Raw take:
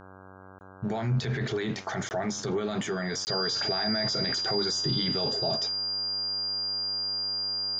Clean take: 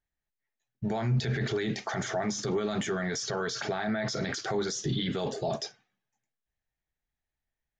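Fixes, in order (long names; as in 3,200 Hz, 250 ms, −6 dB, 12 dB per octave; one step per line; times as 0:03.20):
hum removal 94.7 Hz, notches 17
notch filter 4,800 Hz, Q 30
repair the gap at 0:00.59/0:02.09/0:03.25, 19 ms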